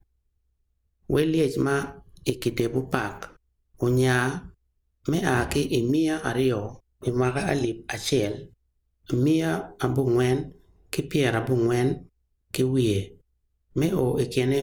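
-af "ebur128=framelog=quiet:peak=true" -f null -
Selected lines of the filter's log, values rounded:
Integrated loudness:
  I:         -25.3 LUFS
  Threshold: -35.9 LUFS
Loudness range:
  LRA:         2.3 LU
  Threshold: -46.2 LUFS
  LRA low:   -27.4 LUFS
  LRA high:  -25.0 LUFS
True peak:
  Peak:       -5.9 dBFS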